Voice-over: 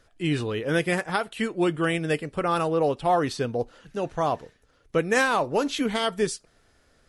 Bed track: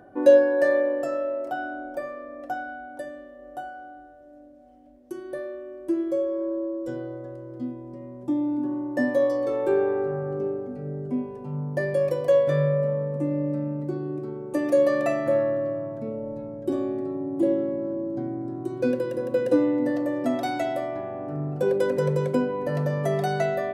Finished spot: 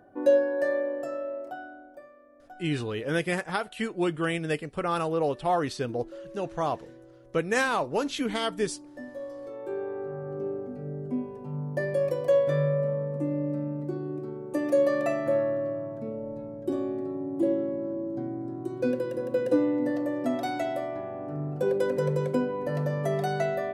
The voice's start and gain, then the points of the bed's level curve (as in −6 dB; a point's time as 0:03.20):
2.40 s, −3.5 dB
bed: 0:01.37 −6 dB
0:02.11 −17.5 dB
0:09.13 −17.5 dB
0:10.60 −3 dB